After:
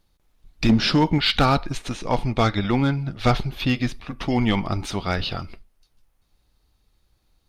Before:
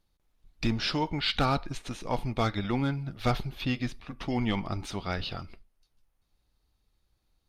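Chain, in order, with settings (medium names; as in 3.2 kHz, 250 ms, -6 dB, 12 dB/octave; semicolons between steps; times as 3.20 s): 0.69–1.18 s: peaking EQ 210 Hz +8 dB 1.3 oct; 1.93–3.52 s: low-pass 9 kHz 12 dB/octave; overload inside the chain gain 18.5 dB; trim +8 dB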